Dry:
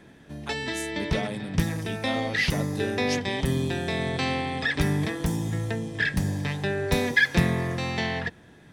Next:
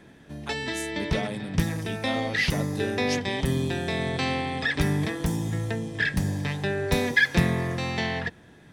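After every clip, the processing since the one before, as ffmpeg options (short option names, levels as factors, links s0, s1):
-af anull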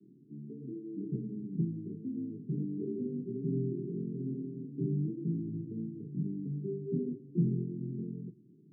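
-af "asuperpass=centerf=220:order=20:qfactor=0.76,flanger=delay=9.7:depth=9.3:regen=-36:speed=1.1:shape=sinusoidal,volume=0.794"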